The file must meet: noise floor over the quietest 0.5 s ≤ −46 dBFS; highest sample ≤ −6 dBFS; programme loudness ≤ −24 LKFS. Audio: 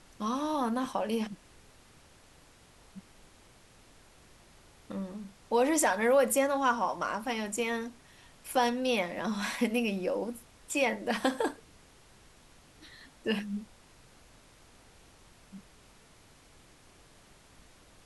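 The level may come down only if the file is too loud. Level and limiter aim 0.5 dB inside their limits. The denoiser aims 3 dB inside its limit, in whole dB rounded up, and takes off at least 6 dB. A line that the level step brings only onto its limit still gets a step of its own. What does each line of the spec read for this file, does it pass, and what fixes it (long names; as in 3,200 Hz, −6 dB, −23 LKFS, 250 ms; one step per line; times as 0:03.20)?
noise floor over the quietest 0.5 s −58 dBFS: in spec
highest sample −13.5 dBFS: in spec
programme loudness −30.5 LKFS: in spec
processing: no processing needed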